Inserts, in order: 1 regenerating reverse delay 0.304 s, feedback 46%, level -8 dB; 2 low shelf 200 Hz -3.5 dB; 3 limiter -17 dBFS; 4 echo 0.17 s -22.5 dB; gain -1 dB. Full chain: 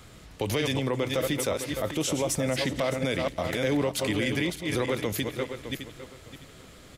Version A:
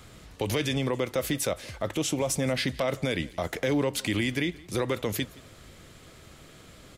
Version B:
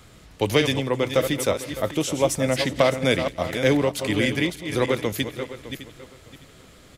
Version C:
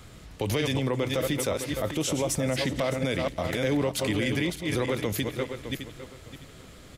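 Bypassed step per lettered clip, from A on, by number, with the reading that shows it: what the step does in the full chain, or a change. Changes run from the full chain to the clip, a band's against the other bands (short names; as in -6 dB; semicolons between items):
1, momentary loudness spread change -5 LU; 3, mean gain reduction 2.0 dB; 2, 125 Hz band +2.0 dB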